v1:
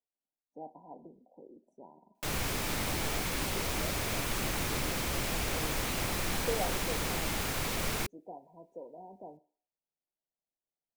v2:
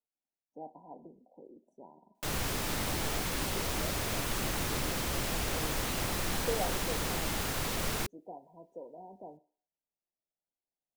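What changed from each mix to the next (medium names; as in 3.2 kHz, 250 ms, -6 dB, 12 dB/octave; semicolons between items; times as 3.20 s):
master: add peaking EQ 2.3 kHz -3.5 dB 0.28 oct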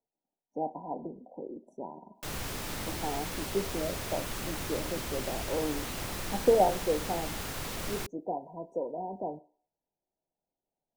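speech +12.0 dB; background -3.5 dB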